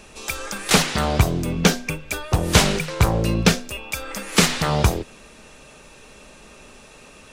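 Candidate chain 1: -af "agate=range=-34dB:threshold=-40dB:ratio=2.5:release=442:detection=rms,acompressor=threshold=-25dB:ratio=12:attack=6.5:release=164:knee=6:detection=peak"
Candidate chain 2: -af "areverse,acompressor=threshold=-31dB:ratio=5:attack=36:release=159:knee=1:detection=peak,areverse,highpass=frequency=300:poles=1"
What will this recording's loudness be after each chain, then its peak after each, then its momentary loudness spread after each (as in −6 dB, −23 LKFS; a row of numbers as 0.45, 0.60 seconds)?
−30.5, −32.5 LKFS; −12.0, −15.5 dBFS; 18, 16 LU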